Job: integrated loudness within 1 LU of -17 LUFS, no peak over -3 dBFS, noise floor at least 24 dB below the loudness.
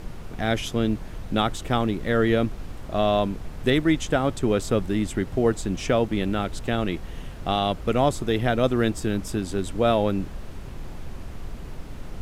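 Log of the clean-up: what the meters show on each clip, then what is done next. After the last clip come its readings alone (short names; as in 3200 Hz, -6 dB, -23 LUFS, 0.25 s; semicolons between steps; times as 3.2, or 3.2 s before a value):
noise floor -38 dBFS; noise floor target -49 dBFS; loudness -24.5 LUFS; peak -8.5 dBFS; loudness target -17.0 LUFS
-> noise print and reduce 11 dB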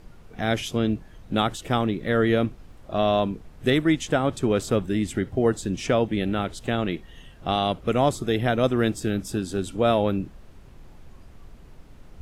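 noise floor -48 dBFS; noise floor target -49 dBFS
-> noise print and reduce 6 dB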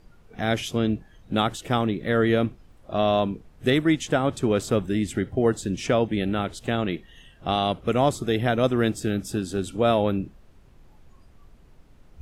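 noise floor -53 dBFS; loudness -24.5 LUFS; peak -9.0 dBFS; loudness target -17.0 LUFS
-> gain +7.5 dB; limiter -3 dBFS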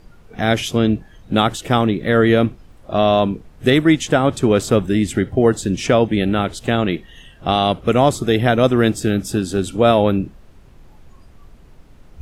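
loudness -17.5 LUFS; peak -3.0 dBFS; noise floor -46 dBFS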